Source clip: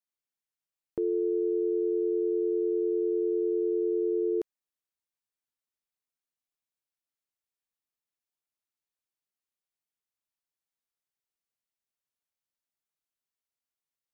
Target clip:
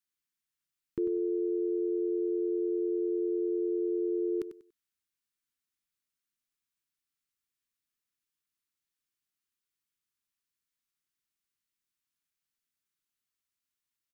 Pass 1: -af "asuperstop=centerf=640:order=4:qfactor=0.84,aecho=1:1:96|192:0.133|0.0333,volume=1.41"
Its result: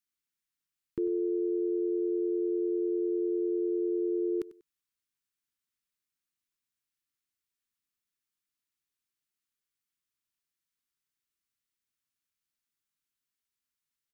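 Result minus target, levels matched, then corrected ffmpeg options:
echo-to-direct -6 dB
-af "asuperstop=centerf=640:order=4:qfactor=0.84,aecho=1:1:96|192|288:0.266|0.0665|0.0166,volume=1.41"

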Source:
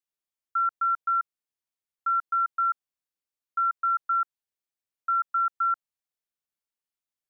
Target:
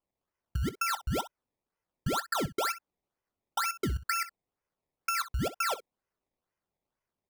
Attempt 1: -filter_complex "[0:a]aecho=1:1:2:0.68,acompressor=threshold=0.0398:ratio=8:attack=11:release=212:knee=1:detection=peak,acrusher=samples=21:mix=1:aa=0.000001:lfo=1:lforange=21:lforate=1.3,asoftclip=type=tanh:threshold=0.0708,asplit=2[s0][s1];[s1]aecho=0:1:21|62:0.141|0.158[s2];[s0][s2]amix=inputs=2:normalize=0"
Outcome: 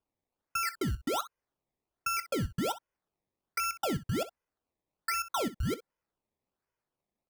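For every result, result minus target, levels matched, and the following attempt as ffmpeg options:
saturation: distortion +20 dB; decimation with a swept rate: distortion +4 dB
-filter_complex "[0:a]aecho=1:1:2:0.68,acompressor=threshold=0.0398:ratio=8:attack=11:release=212:knee=1:detection=peak,acrusher=samples=21:mix=1:aa=0.000001:lfo=1:lforange=21:lforate=1.3,asoftclip=type=tanh:threshold=0.266,asplit=2[s0][s1];[s1]aecho=0:1:21|62:0.141|0.158[s2];[s0][s2]amix=inputs=2:normalize=0"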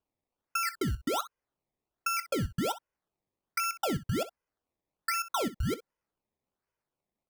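decimation with a swept rate: distortion +4 dB
-filter_complex "[0:a]aecho=1:1:2:0.68,acompressor=threshold=0.0398:ratio=8:attack=11:release=212:knee=1:detection=peak,acrusher=samples=21:mix=1:aa=0.000001:lfo=1:lforange=21:lforate=2.1,asoftclip=type=tanh:threshold=0.266,asplit=2[s0][s1];[s1]aecho=0:1:21|62:0.141|0.158[s2];[s0][s2]amix=inputs=2:normalize=0"

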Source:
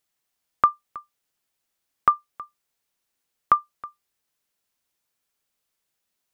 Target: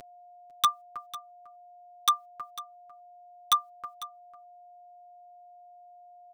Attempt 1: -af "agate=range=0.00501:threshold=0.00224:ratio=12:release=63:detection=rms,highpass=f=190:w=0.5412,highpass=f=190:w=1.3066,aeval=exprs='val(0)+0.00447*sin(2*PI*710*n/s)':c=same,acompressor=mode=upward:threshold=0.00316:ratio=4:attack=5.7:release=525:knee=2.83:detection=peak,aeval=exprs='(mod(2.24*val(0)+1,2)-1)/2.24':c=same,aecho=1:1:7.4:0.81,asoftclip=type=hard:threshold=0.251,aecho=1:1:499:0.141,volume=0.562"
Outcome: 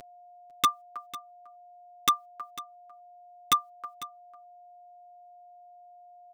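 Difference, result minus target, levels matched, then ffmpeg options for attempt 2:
250 Hz band +16.0 dB
-af "agate=range=0.00501:threshold=0.00224:ratio=12:release=63:detection=rms,aeval=exprs='val(0)+0.00447*sin(2*PI*710*n/s)':c=same,acompressor=mode=upward:threshold=0.00316:ratio=4:attack=5.7:release=525:knee=2.83:detection=peak,aeval=exprs='(mod(2.24*val(0)+1,2)-1)/2.24':c=same,aecho=1:1:7.4:0.81,asoftclip=type=hard:threshold=0.251,aecho=1:1:499:0.141,volume=0.562"

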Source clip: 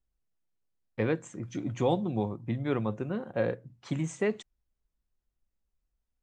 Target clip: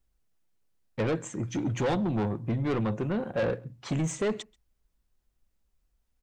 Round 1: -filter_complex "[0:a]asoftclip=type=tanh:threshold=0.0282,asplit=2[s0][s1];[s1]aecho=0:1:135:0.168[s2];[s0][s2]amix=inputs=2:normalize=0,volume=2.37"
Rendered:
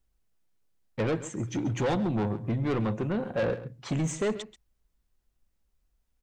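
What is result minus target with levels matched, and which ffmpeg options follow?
echo-to-direct +11.5 dB
-filter_complex "[0:a]asoftclip=type=tanh:threshold=0.0282,asplit=2[s0][s1];[s1]aecho=0:1:135:0.0447[s2];[s0][s2]amix=inputs=2:normalize=0,volume=2.37"

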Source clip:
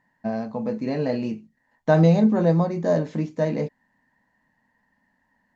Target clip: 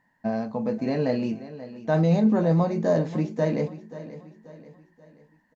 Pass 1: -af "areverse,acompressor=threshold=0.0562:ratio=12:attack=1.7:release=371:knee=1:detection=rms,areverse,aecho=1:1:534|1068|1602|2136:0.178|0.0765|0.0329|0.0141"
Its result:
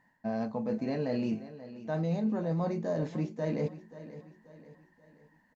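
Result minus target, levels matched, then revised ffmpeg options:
compression: peak gain reduction +10.5 dB
-af "areverse,acompressor=threshold=0.211:ratio=12:attack=1.7:release=371:knee=1:detection=rms,areverse,aecho=1:1:534|1068|1602|2136:0.178|0.0765|0.0329|0.0141"

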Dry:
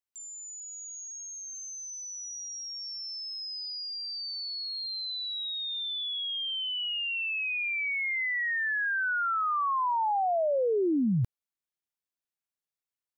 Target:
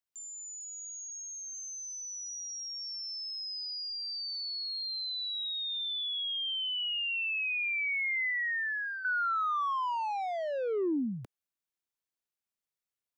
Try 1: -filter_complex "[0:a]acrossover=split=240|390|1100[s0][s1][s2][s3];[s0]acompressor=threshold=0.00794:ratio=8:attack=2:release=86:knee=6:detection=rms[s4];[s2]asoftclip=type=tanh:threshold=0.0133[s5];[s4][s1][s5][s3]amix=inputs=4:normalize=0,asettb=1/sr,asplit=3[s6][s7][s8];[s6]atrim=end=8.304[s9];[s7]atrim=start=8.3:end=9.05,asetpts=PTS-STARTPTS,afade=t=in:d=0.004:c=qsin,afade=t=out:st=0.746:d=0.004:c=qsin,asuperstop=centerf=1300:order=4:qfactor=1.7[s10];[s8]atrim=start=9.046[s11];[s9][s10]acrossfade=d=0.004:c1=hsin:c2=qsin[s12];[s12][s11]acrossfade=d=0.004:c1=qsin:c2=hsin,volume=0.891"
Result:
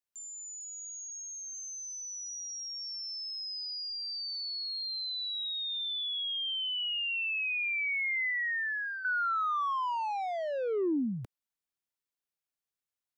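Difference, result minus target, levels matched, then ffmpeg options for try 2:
compression: peak gain reduction -6 dB
-filter_complex "[0:a]acrossover=split=240|390|1100[s0][s1][s2][s3];[s0]acompressor=threshold=0.00355:ratio=8:attack=2:release=86:knee=6:detection=rms[s4];[s2]asoftclip=type=tanh:threshold=0.0133[s5];[s4][s1][s5][s3]amix=inputs=4:normalize=0,asettb=1/sr,asplit=3[s6][s7][s8];[s6]atrim=end=8.304[s9];[s7]atrim=start=8.3:end=9.05,asetpts=PTS-STARTPTS,afade=t=in:d=0.004:c=qsin,afade=t=out:st=0.746:d=0.004:c=qsin,asuperstop=centerf=1300:order=4:qfactor=1.7[s10];[s8]atrim=start=9.046[s11];[s9][s10]acrossfade=d=0.004:c1=hsin:c2=qsin[s12];[s12][s11]acrossfade=d=0.004:c1=qsin:c2=hsin,volume=0.891"

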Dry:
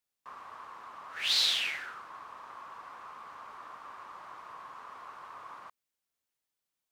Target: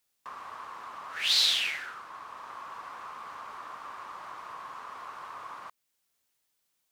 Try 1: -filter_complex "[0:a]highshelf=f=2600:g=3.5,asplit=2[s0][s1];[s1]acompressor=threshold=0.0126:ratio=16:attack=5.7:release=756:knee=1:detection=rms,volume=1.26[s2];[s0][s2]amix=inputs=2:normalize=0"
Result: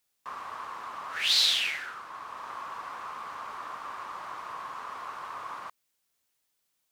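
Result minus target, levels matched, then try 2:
compression: peak gain reduction -8.5 dB
-filter_complex "[0:a]highshelf=f=2600:g=3.5,asplit=2[s0][s1];[s1]acompressor=threshold=0.00447:ratio=16:attack=5.7:release=756:knee=1:detection=rms,volume=1.26[s2];[s0][s2]amix=inputs=2:normalize=0"

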